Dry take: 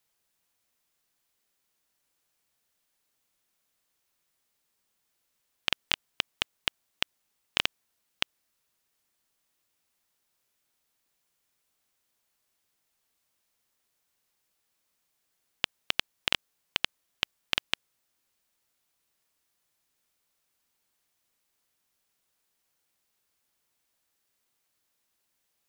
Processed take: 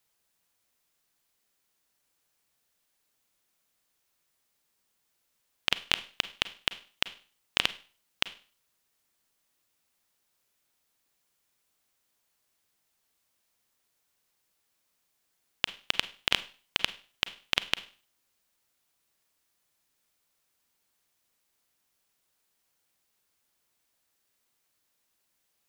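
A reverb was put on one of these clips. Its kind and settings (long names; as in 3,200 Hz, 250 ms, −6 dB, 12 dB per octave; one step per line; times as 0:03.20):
four-comb reverb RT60 0.39 s, combs from 33 ms, DRR 14 dB
level +1 dB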